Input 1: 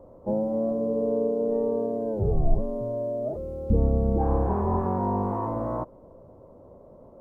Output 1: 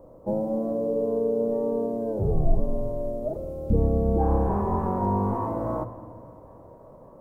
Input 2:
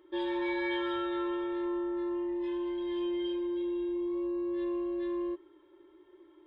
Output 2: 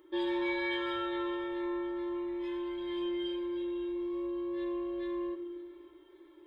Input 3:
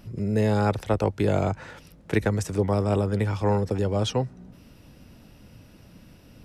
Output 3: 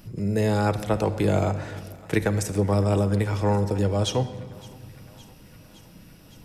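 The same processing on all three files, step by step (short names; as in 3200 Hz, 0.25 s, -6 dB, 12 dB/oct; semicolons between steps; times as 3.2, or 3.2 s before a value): high shelf 6500 Hz +8.5 dB; thinning echo 0.563 s, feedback 77%, high-pass 620 Hz, level -21.5 dB; shoebox room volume 2000 m³, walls mixed, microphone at 0.6 m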